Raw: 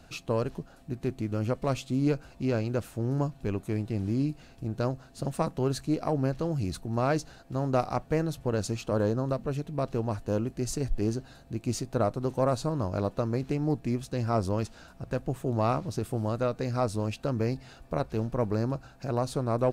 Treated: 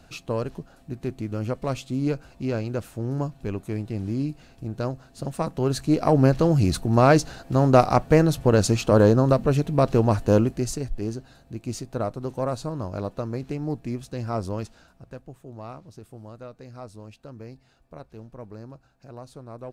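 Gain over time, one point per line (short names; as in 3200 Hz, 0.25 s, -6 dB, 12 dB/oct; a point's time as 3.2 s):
5.37 s +1 dB
6.22 s +10.5 dB
10.39 s +10.5 dB
10.88 s -1 dB
14.59 s -1 dB
15.37 s -12.5 dB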